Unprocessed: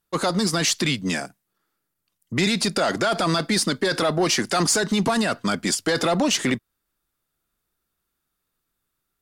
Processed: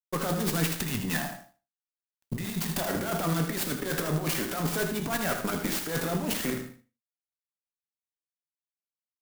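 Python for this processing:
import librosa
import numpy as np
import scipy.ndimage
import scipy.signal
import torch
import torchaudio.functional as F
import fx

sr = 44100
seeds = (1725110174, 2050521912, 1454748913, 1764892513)

y = fx.comb(x, sr, ms=1.1, depth=0.8, at=(0.67, 2.86))
y = fx.over_compress(y, sr, threshold_db=-23.0, ratio=-0.5)
y = fx.tremolo_shape(y, sr, shape='saw_up', hz=6.0, depth_pct=65)
y = fx.tube_stage(y, sr, drive_db=23.0, bias=0.5)
y = np.sign(y) * np.maximum(np.abs(y) - 10.0 ** (-54.0 / 20.0), 0.0)
y = fx.echo_feedback(y, sr, ms=78, feedback_pct=19, wet_db=-8)
y = fx.rev_gated(y, sr, seeds[0], gate_ms=210, shape='falling', drr_db=5.0)
y = fx.clock_jitter(y, sr, seeds[1], jitter_ms=0.056)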